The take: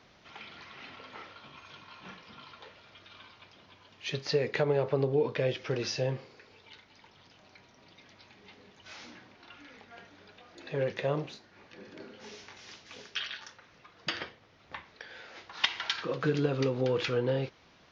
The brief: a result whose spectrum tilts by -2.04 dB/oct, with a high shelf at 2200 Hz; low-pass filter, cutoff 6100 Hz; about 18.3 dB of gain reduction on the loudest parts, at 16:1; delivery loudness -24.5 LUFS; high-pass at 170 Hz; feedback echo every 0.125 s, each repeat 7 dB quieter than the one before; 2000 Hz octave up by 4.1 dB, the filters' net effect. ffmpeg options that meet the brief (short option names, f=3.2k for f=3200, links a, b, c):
-af "highpass=170,lowpass=6.1k,equalizer=f=2k:t=o:g=7.5,highshelf=f=2.2k:g=-4.5,acompressor=threshold=-40dB:ratio=16,aecho=1:1:125|250|375|500|625:0.447|0.201|0.0905|0.0407|0.0183,volume=21.5dB"